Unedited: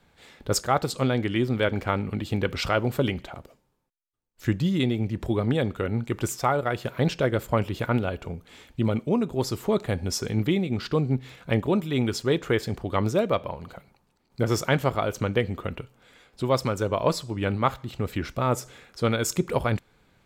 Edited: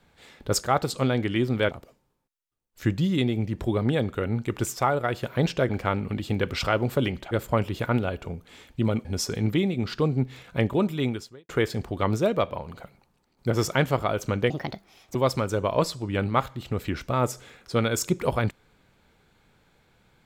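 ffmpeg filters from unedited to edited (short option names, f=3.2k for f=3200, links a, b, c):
-filter_complex "[0:a]asplit=8[a][b][c][d][e][f][g][h];[a]atrim=end=1.712[i];[b]atrim=start=3.328:end=7.312[j];[c]atrim=start=1.708:end=3.332[k];[d]atrim=start=7.308:end=9.052[l];[e]atrim=start=9.978:end=12.42,asetpts=PTS-STARTPTS,afade=t=out:st=1.962:d=0.48:c=qua[m];[f]atrim=start=12.42:end=15.434,asetpts=PTS-STARTPTS,afade=t=in:d=0.004:c=hsin[n];[g]atrim=start=15.43:end=16.43,asetpts=PTS-STARTPTS,asetrate=67914,aresample=44100,atrim=end_sample=28636,asetpts=PTS-STARTPTS[o];[h]atrim=start=16.426[p];[i][j]acrossfade=d=0.004:c1=hsin:c2=hsin[q];[q][k]acrossfade=d=0.004:c1=hsin:c2=hsin[r];[r][l]acrossfade=d=0.004:c1=hsin:c2=hsin[s];[m][n]concat=n=2:v=0:a=1[t];[s][t]acrossfade=d=0.004:c1=hsin:c2=hsin[u];[u][o]acrossfade=d=0.004:c1=hsin:c2=hsin[v];[v][p]acrossfade=d=0.004:c1=hsin:c2=hsin"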